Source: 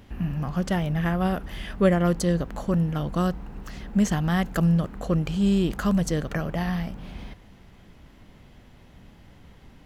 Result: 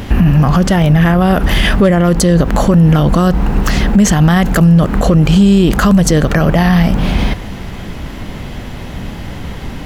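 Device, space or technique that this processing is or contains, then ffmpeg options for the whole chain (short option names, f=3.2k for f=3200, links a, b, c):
loud club master: -af "acompressor=threshold=-26dB:ratio=2.5,asoftclip=type=hard:threshold=-18.5dB,alimiter=level_in=26.5dB:limit=-1dB:release=50:level=0:latency=1,volume=-1dB"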